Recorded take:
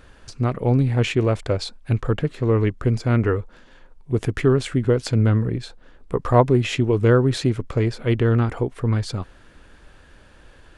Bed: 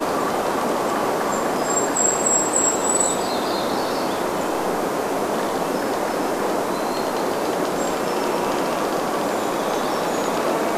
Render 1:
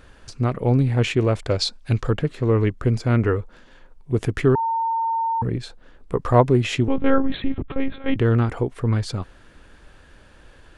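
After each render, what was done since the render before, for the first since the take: 1.5–2.1 bell 5100 Hz +9 dB 1.4 oct; 4.55–5.42 bleep 909 Hz -19.5 dBFS; 6.88–8.16 monotone LPC vocoder at 8 kHz 270 Hz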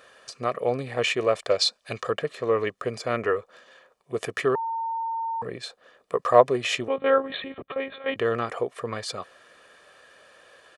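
HPF 410 Hz 12 dB/oct; comb 1.7 ms, depth 53%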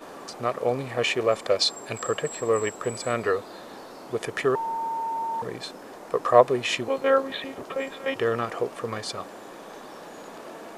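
add bed -20 dB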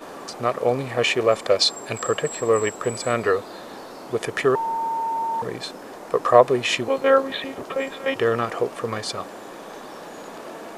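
gain +4 dB; limiter -1 dBFS, peak gain reduction 2.5 dB

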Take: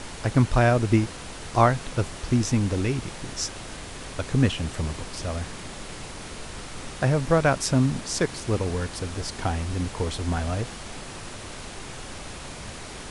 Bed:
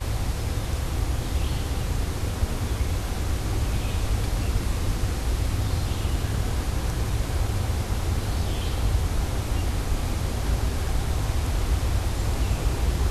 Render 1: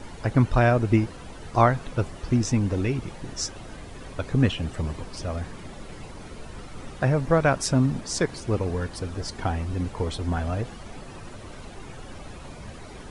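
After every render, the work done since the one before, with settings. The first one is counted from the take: denoiser 11 dB, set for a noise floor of -39 dBFS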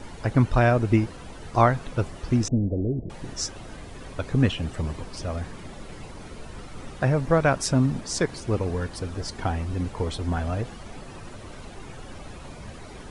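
2.48–3.1 elliptic low-pass 660 Hz, stop band 50 dB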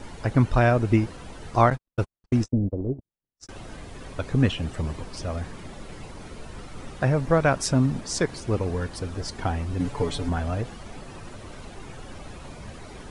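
1.7–3.49 gate -26 dBFS, range -60 dB; 9.79–10.29 comb 7 ms, depth 89%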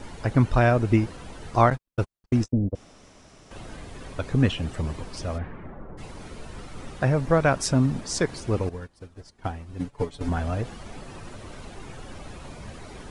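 2.75–3.51 room tone; 5.37–5.97 LPF 2900 Hz -> 1200 Hz 24 dB/oct; 8.69–10.21 upward expander 2.5:1, over -37 dBFS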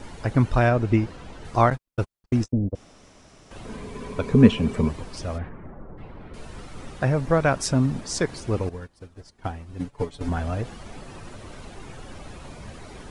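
0.69–1.45 air absorption 54 m; 3.64–4.88 small resonant body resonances 220/420/1000/2300 Hz, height 12 dB -> 16 dB, ringing for 55 ms; 5.49–6.34 air absorption 450 m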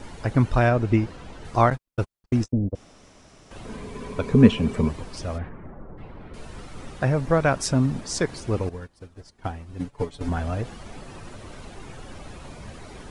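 nothing audible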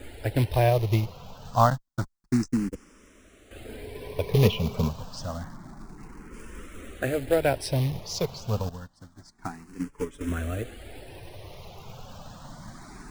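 short-mantissa float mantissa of 2-bit; endless phaser +0.28 Hz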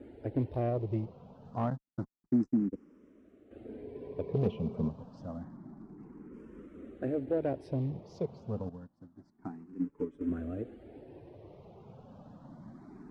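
soft clip -17.5 dBFS, distortion -13 dB; band-pass 280 Hz, Q 1.3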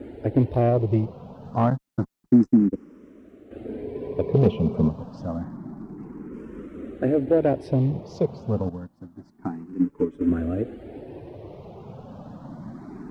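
gain +11.5 dB

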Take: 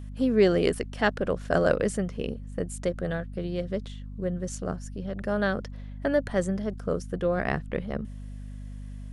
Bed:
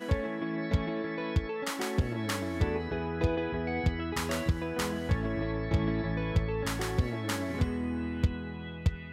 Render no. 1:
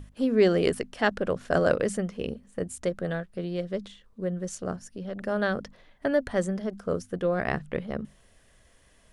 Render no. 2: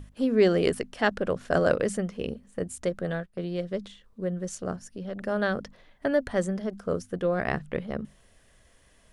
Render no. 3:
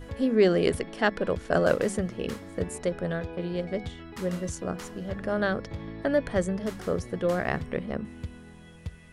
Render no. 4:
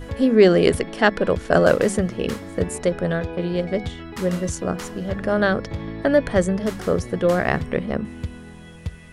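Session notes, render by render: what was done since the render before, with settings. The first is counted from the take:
notches 50/100/150/200/250 Hz
3.12–3.8 gate -43 dBFS, range -9 dB
add bed -9.5 dB
gain +7.5 dB; limiter -2 dBFS, peak gain reduction 1.5 dB

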